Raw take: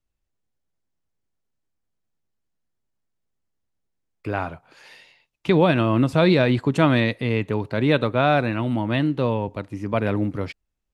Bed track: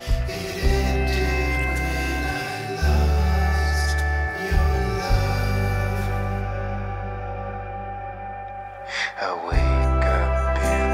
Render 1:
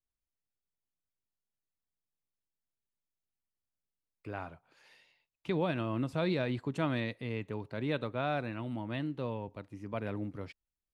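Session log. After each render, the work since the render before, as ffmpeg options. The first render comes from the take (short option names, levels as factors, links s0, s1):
-af "volume=0.188"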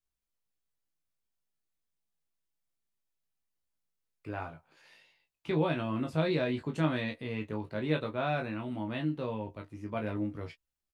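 -filter_complex "[0:a]asplit=2[s0][s1];[s1]adelay=13,volume=0.299[s2];[s0][s2]amix=inputs=2:normalize=0,aecho=1:1:19|32:0.562|0.224"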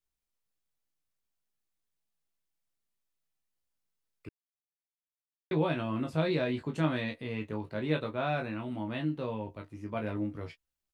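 -filter_complex "[0:a]asplit=3[s0][s1][s2];[s0]atrim=end=4.29,asetpts=PTS-STARTPTS,afade=t=out:st=4.286:d=0.004:c=hsin[s3];[s1]atrim=start=4.29:end=5.51,asetpts=PTS-STARTPTS,volume=0[s4];[s2]atrim=start=5.51,asetpts=PTS-STARTPTS,afade=t=in:d=0.004:c=hsin[s5];[s3][s4][s5]concat=n=3:v=0:a=1"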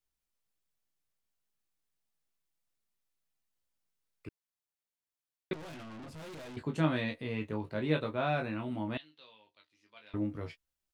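-filter_complex "[0:a]asettb=1/sr,asplit=3[s0][s1][s2];[s0]atrim=end=5.534[s3];[s1]atrim=start=5.53:end=6.57,asetpts=PTS-STARTPTS,afade=t=in:d=0.004:c=qsin,afade=t=out:st=1.036:d=0.004:c=qsin,aeval=exprs='(tanh(178*val(0)+0.15)-tanh(0.15))/178':c=same[s4];[s2]atrim=start=6.566[s5];[s3][s4]acrossfade=d=0.004:c1=hsin:c2=qsin[s6];[s6][s5]acrossfade=d=0.004:c1=qsin:c2=hsin,asettb=1/sr,asplit=3[s7][s8][s9];[s7]atrim=end=8.974[s10];[s8]atrim=start=8.97:end=10.14,asetpts=PTS-STARTPTS,afade=t=in:d=0.004:c=qsin,afade=t=out:st=1.166:d=0.004:c=qsin,bandpass=f=3900:t=q:w=2.7[s11];[s9]atrim=start=10.136[s12];[s10][s11]acrossfade=d=0.004:c1=hsin:c2=qsin[s13];[s13][s12]acrossfade=d=0.004:c1=qsin:c2=hsin"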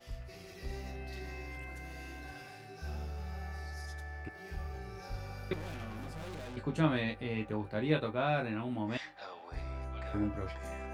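-filter_complex "[1:a]volume=0.0841[s0];[0:a][s0]amix=inputs=2:normalize=0"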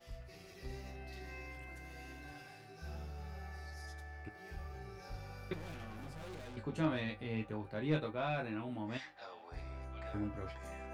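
-af "asoftclip=type=tanh:threshold=0.0944,flanger=delay=5.9:depth=3.7:regen=69:speed=0.36:shape=sinusoidal"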